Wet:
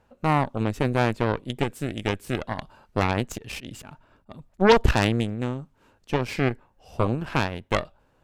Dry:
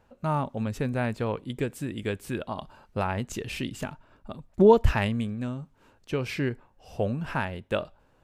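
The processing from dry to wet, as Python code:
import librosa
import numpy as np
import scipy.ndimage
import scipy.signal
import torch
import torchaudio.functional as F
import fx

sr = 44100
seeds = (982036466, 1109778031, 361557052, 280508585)

y = fx.auto_swell(x, sr, attack_ms=131.0, at=(3.08, 4.76))
y = fx.cheby_harmonics(y, sr, harmonics=(8,), levels_db=(-11,), full_scale_db=-6.5)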